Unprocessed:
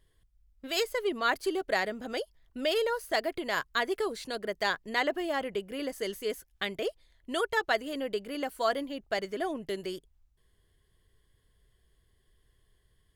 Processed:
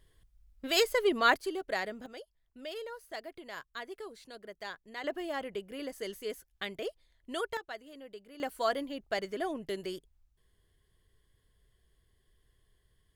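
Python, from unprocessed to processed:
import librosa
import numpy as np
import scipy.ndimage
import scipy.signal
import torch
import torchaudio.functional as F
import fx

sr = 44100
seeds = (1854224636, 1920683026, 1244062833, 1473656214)

y = fx.gain(x, sr, db=fx.steps((0.0, 3.0), (1.36, -5.0), (2.06, -13.0), (5.04, -5.0), (7.57, -15.0), (8.4, -2.0)))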